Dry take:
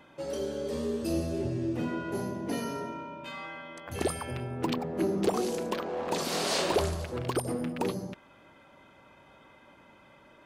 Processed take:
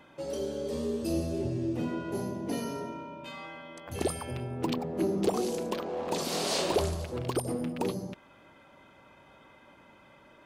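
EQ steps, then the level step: dynamic bell 1.6 kHz, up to -5 dB, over -51 dBFS, Q 1.2; 0.0 dB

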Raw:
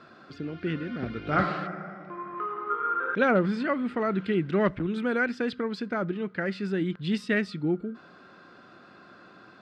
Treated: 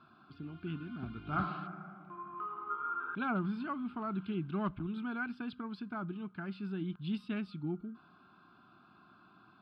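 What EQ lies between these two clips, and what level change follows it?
treble shelf 3.3 kHz -9 dB; static phaser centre 1.9 kHz, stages 6; -6.0 dB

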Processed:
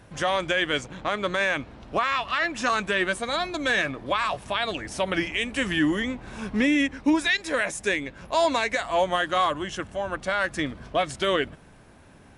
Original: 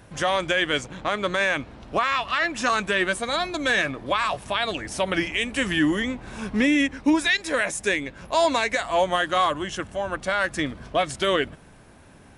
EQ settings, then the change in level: treble shelf 9.6 kHz -5.5 dB; -1.5 dB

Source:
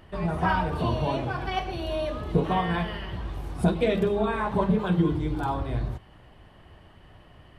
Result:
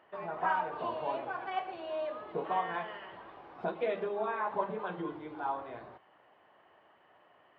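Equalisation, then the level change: high-pass 640 Hz 12 dB/octave; distance through air 210 m; tape spacing loss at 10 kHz 28 dB; 0.0 dB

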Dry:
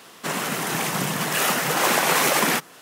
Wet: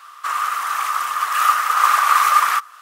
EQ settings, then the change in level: resonant high-pass 1.2 kHz, resonance Q 14; -4.5 dB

